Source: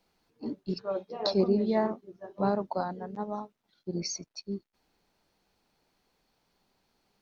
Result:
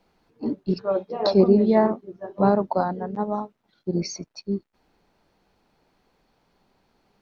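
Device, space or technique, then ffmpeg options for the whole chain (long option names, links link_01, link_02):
through cloth: -af "highshelf=frequency=3200:gain=-11,volume=9dB"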